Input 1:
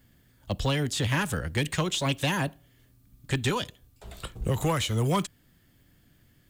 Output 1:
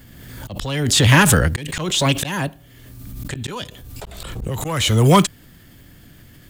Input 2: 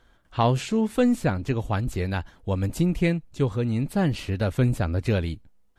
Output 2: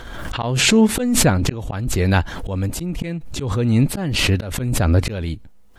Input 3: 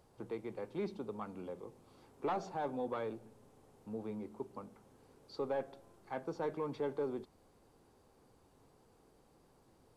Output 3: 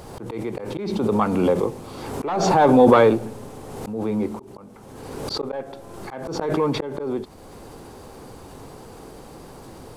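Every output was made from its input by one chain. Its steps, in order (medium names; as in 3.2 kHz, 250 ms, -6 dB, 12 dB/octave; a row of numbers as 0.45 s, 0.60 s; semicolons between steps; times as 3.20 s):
slow attack 605 ms; swell ahead of each attack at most 34 dB/s; peak normalisation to -3 dBFS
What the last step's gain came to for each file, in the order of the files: +15.0 dB, +14.0 dB, +25.5 dB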